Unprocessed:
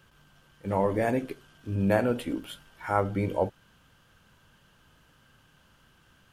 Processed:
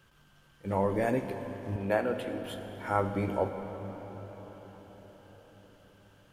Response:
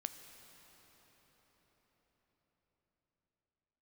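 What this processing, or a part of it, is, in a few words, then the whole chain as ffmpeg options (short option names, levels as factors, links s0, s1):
cathedral: -filter_complex "[0:a]asettb=1/sr,asplit=3[s0][s1][s2];[s0]atrim=end=1.764[s3];[s1]atrim=start=1.76:end=2.45,asetpts=PTS-STARTPTS,afade=t=in:d=0.004:c=qsin,afade=t=out:st=0.686:d=0.004:c=qsin,bass=f=250:g=-12,treble=f=4000:g=-6[s4];[s2]atrim=start=2.446[s5];[s3][s4]acrossfade=d=0.004:c1=hsin:c2=qsin[s6];[s6][s5]acrossfade=d=0.004:c1=qsin:c2=hsin[s7];[1:a]atrim=start_sample=2205[s8];[s7][s8]afir=irnorm=-1:irlink=0"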